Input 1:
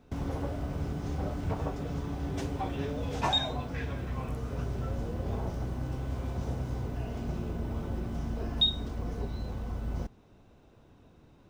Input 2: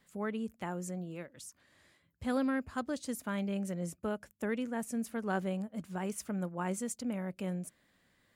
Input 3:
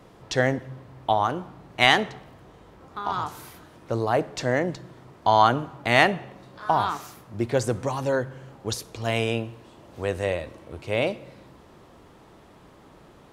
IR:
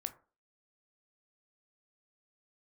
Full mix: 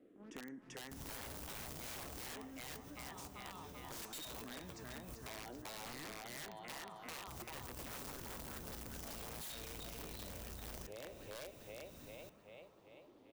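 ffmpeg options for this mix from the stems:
-filter_complex "[0:a]highshelf=f=6.8k:g=10,acompressor=threshold=-47dB:ratio=2,crystalizer=i=4.5:c=0,adelay=800,volume=-0.5dB,asplit=3[a][b][c];[a]atrim=end=5.62,asetpts=PTS-STARTPTS,afade=t=out:st=5.616:d=0.004:c=hsin[d];[b]atrim=start=5.62:end=7.27,asetpts=PTS-STARTPTS,volume=0[e];[c]atrim=start=7.27,asetpts=PTS-STARTPTS,afade=t=in:d=0.004:c=hsin[f];[d][e][f]concat=n=3:v=0:a=1,asplit=3[g][h][i];[h]volume=-23.5dB[j];[i]volume=-21.5dB[k];[1:a]highshelf=f=7k:g=10,aeval=exprs='val(0)+0.00316*(sin(2*PI*50*n/s)+sin(2*PI*2*50*n/s)/2+sin(2*PI*3*50*n/s)/3+sin(2*PI*4*50*n/s)/4+sin(2*PI*5*50*n/s)/5)':c=same,acrusher=bits=4:mix=0:aa=0.5,volume=-13dB,asplit=4[l][m][n][o];[m]volume=-21dB[p];[n]volume=-20.5dB[q];[2:a]equalizer=f=67:t=o:w=2.3:g=-11,asplit=2[r][s];[s]afreqshift=-0.53[t];[r][t]amix=inputs=2:normalize=1,volume=-4dB,asplit=3[u][v][w];[v]volume=-17.5dB[x];[w]volume=-13dB[y];[o]apad=whole_len=542142[z];[g][z]sidechaincompress=threshold=-55dB:ratio=10:attack=5.2:release=146[aa];[l][u]amix=inputs=2:normalize=0,bandpass=f=260:t=q:w=2:csg=0,acompressor=threshold=-46dB:ratio=5,volume=0dB[ab];[3:a]atrim=start_sample=2205[ac];[j][p][x]amix=inputs=3:normalize=0[ad];[ad][ac]afir=irnorm=-1:irlink=0[ae];[k][q][y]amix=inputs=3:normalize=0,aecho=0:1:389|778|1167|1556|1945|2334|2723|3112|3501:1|0.57|0.325|0.185|0.106|0.0602|0.0343|0.0195|0.0111[af];[aa][ab][ae][af]amix=inputs=4:normalize=0,aeval=exprs='(mod(53.1*val(0)+1,2)-1)/53.1':c=same,acompressor=threshold=-49dB:ratio=2.5"

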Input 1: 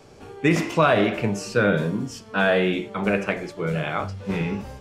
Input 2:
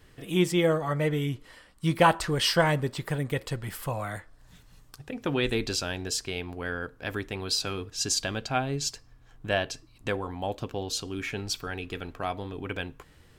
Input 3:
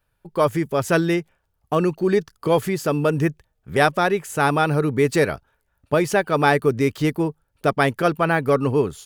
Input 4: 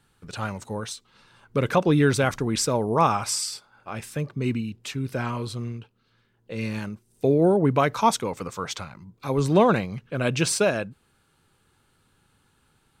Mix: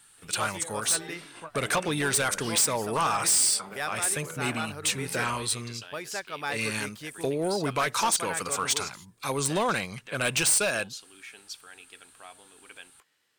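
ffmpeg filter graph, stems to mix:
-filter_complex "[0:a]lowpass=1.5k,acompressor=threshold=-33dB:ratio=3,adelay=650,volume=0.5dB[a];[1:a]highpass=220,volume=-16dB[b];[2:a]volume=-17dB[c];[3:a]equalizer=f=8.9k:t=o:w=0.47:g=13,acompressor=threshold=-21dB:ratio=3,volume=0dB,asplit=2[d][e];[e]apad=whole_len=240479[f];[a][f]sidechaingate=range=-33dB:threshold=-53dB:ratio=16:detection=peak[g];[g][b]amix=inputs=2:normalize=0,acompressor=threshold=-42dB:ratio=2,volume=0dB[h];[c][d][h]amix=inputs=3:normalize=0,tiltshelf=f=790:g=-8,volume=20dB,asoftclip=hard,volume=-20dB"

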